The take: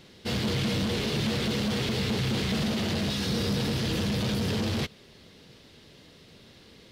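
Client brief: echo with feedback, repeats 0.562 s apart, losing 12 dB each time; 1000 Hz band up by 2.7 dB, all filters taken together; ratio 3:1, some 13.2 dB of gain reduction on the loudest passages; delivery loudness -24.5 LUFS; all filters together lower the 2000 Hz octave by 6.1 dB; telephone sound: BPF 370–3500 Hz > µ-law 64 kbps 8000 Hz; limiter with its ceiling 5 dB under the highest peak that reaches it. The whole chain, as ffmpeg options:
-af "equalizer=f=1k:t=o:g=6,equalizer=f=2k:t=o:g=-9,acompressor=threshold=-44dB:ratio=3,alimiter=level_in=12.5dB:limit=-24dB:level=0:latency=1,volume=-12.5dB,highpass=370,lowpass=3.5k,aecho=1:1:562|1124|1686:0.251|0.0628|0.0157,volume=26dB" -ar 8000 -c:a pcm_mulaw

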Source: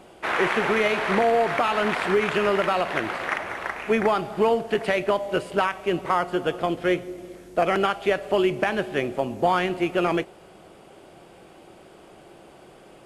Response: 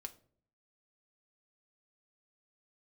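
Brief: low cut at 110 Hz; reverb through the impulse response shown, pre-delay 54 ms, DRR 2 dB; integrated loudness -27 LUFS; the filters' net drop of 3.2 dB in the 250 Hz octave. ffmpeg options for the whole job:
-filter_complex "[0:a]highpass=110,equalizer=f=250:t=o:g=-5,asplit=2[a][b];[1:a]atrim=start_sample=2205,adelay=54[c];[b][c]afir=irnorm=-1:irlink=0,volume=2.5dB[d];[a][d]amix=inputs=2:normalize=0,volume=-4.5dB"

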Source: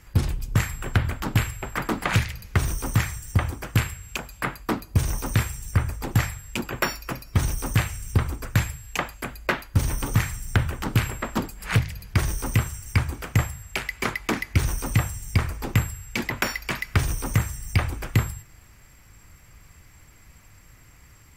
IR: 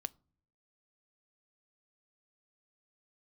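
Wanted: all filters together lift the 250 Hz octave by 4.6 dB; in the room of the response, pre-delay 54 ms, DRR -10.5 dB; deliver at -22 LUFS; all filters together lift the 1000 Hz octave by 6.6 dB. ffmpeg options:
-filter_complex "[0:a]equalizer=f=250:t=o:g=6,equalizer=f=1k:t=o:g=8,asplit=2[a][b];[1:a]atrim=start_sample=2205,adelay=54[c];[b][c]afir=irnorm=-1:irlink=0,volume=12.5dB[d];[a][d]amix=inputs=2:normalize=0,volume=-8.5dB"

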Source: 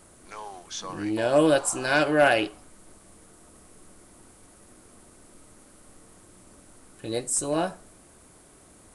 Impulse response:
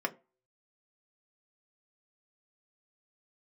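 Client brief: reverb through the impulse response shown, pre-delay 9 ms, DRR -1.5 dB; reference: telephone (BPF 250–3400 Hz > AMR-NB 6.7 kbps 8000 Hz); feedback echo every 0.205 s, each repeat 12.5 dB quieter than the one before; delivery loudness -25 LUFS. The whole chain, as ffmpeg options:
-filter_complex "[0:a]aecho=1:1:205|410|615:0.237|0.0569|0.0137,asplit=2[a][b];[1:a]atrim=start_sample=2205,adelay=9[c];[b][c]afir=irnorm=-1:irlink=0,volume=-4.5dB[d];[a][d]amix=inputs=2:normalize=0,highpass=250,lowpass=3.4k,volume=-3dB" -ar 8000 -c:a libopencore_amrnb -b:a 6700

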